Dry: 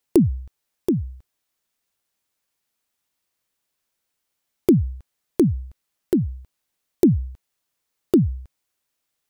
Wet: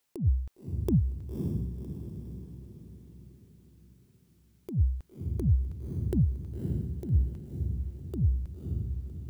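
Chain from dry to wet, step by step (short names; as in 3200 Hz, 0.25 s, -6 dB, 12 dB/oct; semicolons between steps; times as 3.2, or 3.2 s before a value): negative-ratio compressor -21 dBFS, ratio -0.5; diffused feedback echo 0.553 s, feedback 48%, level -5 dB; gain -3 dB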